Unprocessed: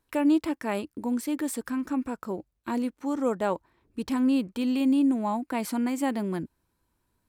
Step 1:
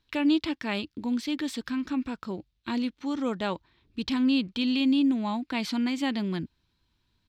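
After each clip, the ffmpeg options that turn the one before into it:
-af "firequalizer=gain_entry='entry(120,0);entry(500,-9);entry(3600,10);entry(8900,-16)':delay=0.05:min_phase=1,volume=1.41"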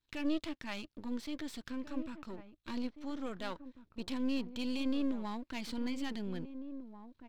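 -filter_complex "[0:a]aeval=exprs='if(lt(val(0),0),0.251*val(0),val(0))':c=same,asplit=2[s0][s1];[s1]adelay=1691,volume=0.282,highshelf=f=4000:g=-38[s2];[s0][s2]amix=inputs=2:normalize=0,volume=0.447"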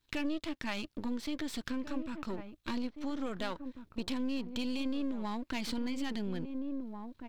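-af "acompressor=threshold=0.01:ratio=4,volume=2.51"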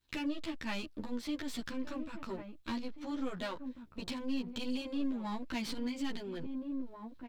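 -filter_complex "[0:a]asplit=2[s0][s1];[s1]adelay=11.5,afreqshift=-2.8[s2];[s0][s2]amix=inputs=2:normalize=1,volume=1.19"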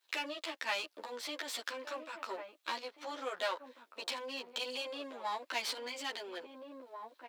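-af "highpass=f=500:w=0.5412,highpass=f=500:w=1.3066,volume=1.88"

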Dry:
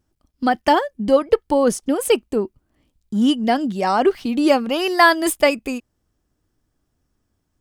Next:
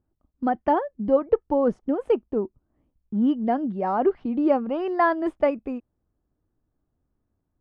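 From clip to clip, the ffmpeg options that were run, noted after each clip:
-af "lowpass=1100,volume=0.596"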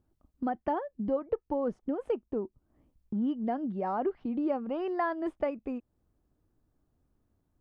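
-af "acompressor=threshold=0.0112:ratio=2,volume=1.26"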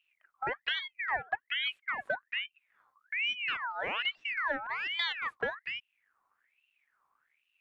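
-af "aeval=exprs='val(0)*sin(2*PI*1900*n/s+1900*0.45/1.2*sin(2*PI*1.2*n/s))':c=same"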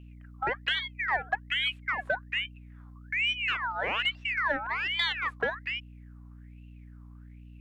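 -af "aeval=exprs='val(0)+0.00282*(sin(2*PI*60*n/s)+sin(2*PI*2*60*n/s)/2+sin(2*PI*3*60*n/s)/3+sin(2*PI*4*60*n/s)/4+sin(2*PI*5*60*n/s)/5)':c=same,aeval=exprs='0.126*(cos(1*acos(clip(val(0)/0.126,-1,1)))-cos(1*PI/2))+0.00224*(cos(5*acos(clip(val(0)/0.126,-1,1)))-cos(5*PI/2))':c=same,volume=1.5"

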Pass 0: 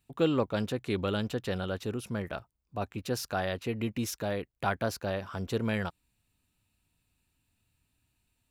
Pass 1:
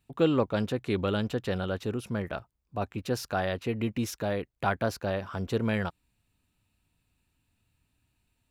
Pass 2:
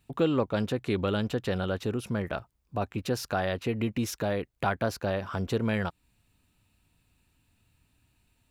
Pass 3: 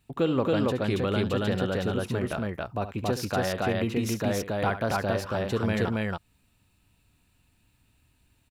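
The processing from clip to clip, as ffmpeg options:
-af "highshelf=f=4100:g=-5.5,volume=1.33"
-af "acompressor=threshold=0.0112:ratio=1.5,volume=1.88"
-af "aecho=1:1:69.97|277:0.251|0.891"

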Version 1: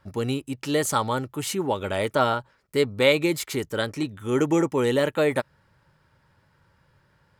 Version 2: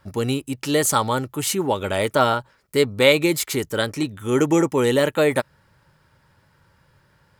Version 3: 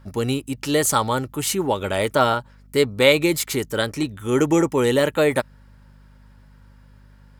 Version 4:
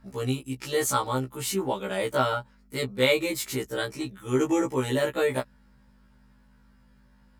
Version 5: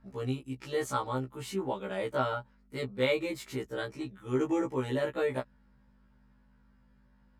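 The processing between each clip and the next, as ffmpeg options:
-af "highshelf=f=6200:g=6,volume=1.5"
-af "aeval=exprs='val(0)+0.00398*(sin(2*PI*50*n/s)+sin(2*PI*2*50*n/s)/2+sin(2*PI*3*50*n/s)/3+sin(2*PI*4*50*n/s)/4+sin(2*PI*5*50*n/s)/5)':c=same"
-af "afftfilt=real='re*1.73*eq(mod(b,3),0)':imag='im*1.73*eq(mod(b,3),0)':win_size=2048:overlap=0.75,volume=0.596"
-af "lowpass=f=2400:p=1,volume=0.562"

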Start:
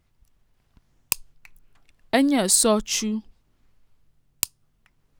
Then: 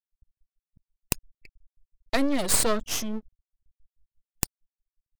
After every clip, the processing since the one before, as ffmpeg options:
-af "afftfilt=real='re*gte(hypot(re,im),0.0112)':imag='im*gte(hypot(re,im),0.0112)':win_size=1024:overlap=0.75,aeval=exprs='max(val(0),0)':c=same"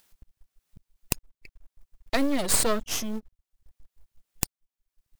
-filter_complex "[0:a]asplit=2[s0][s1];[s1]acompressor=mode=upward:threshold=0.0316:ratio=2.5,volume=1[s2];[s0][s2]amix=inputs=2:normalize=0,acrusher=bits=7:mode=log:mix=0:aa=0.000001,volume=0.473"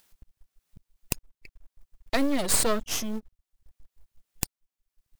-af "asoftclip=type=tanh:threshold=0.596"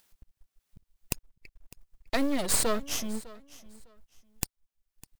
-af "aecho=1:1:604|1208:0.1|0.022,volume=0.75"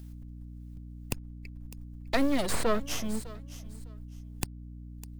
-filter_complex "[0:a]acrossover=split=140|2900[s0][s1][s2];[s2]acompressor=threshold=0.0141:ratio=6[s3];[s0][s1][s3]amix=inputs=3:normalize=0,aeval=exprs='val(0)+0.00631*(sin(2*PI*60*n/s)+sin(2*PI*2*60*n/s)/2+sin(2*PI*3*60*n/s)/3+sin(2*PI*4*60*n/s)/4+sin(2*PI*5*60*n/s)/5)':c=same,volume=1.19"

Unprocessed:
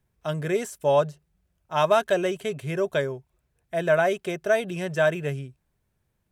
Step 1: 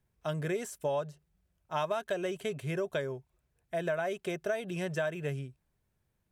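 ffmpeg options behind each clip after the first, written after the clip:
-af "acompressor=threshold=0.0562:ratio=6,volume=0.631"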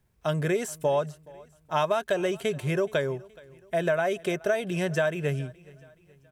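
-af "aecho=1:1:423|846|1269:0.0708|0.0319|0.0143,volume=2.24"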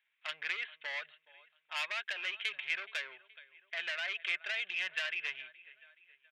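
-af "aresample=8000,aresample=44100,asoftclip=type=tanh:threshold=0.0531,highpass=f=2200:t=q:w=2.3"

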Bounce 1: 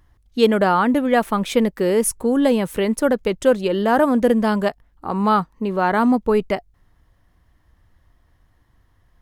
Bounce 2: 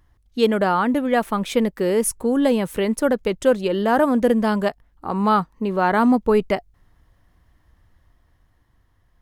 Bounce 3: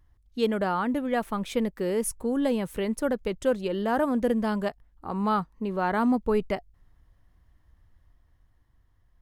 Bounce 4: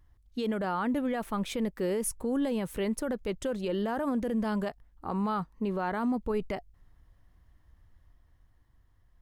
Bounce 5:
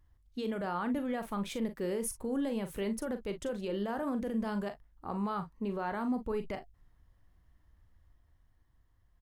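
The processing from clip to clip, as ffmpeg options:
-af "dynaudnorm=f=320:g=9:m=1.58,volume=0.75"
-af "lowshelf=f=100:g=7.5,volume=0.398"
-af "alimiter=limit=0.075:level=0:latency=1:release=36"
-af "aecho=1:1:40|53:0.316|0.141,volume=0.596"

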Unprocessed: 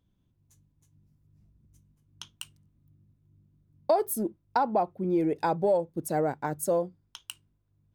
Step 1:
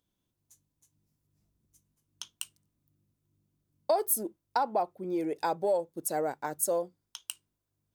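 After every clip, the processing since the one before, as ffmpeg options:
-af "bass=f=250:g=-12,treble=f=4000:g=8,volume=0.75"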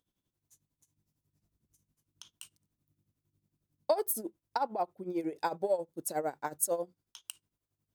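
-af "tremolo=f=11:d=0.76"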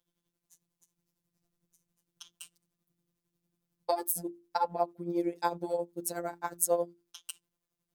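-af "bandreject=f=50:t=h:w=6,bandreject=f=100:t=h:w=6,bandreject=f=150:t=h:w=6,bandreject=f=200:t=h:w=6,bandreject=f=250:t=h:w=6,bandreject=f=300:t=h:w=6,bandreject=f=350:t=h:w=6,afftfilt=real='hypot(re,im)*cos(PI*b)':imag='0':win_size=1024:overlap=0.75,volume=1.78"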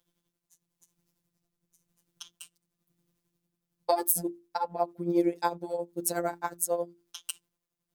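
-af "tremolo=f=0.97:d=0.59,volume=2"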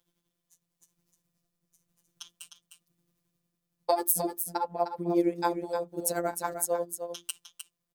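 -af "aecho=1:1:306:0.398"

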